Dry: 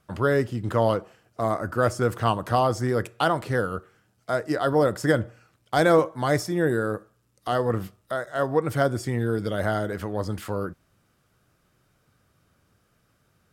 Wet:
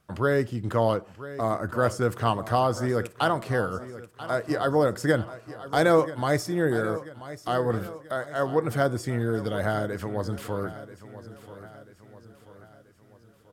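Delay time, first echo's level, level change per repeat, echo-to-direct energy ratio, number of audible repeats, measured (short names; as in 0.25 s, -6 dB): 0.986 s, -15.0 dB, -6.0 dB, -14.0 dB, 4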